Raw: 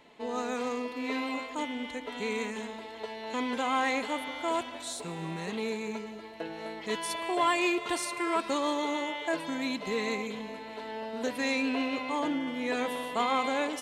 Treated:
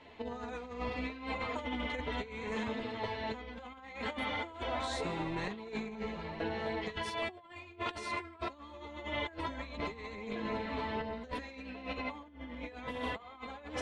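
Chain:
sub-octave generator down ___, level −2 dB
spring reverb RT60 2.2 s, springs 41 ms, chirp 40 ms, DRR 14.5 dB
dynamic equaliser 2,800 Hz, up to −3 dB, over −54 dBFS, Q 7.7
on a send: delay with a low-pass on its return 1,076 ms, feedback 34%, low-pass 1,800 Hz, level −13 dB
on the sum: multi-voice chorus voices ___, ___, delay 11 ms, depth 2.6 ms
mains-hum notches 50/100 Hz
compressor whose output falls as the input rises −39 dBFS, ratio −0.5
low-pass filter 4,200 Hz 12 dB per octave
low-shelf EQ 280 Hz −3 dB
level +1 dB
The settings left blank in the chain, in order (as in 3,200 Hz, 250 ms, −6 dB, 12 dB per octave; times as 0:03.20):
2 octaves, 2, 0.72 Hz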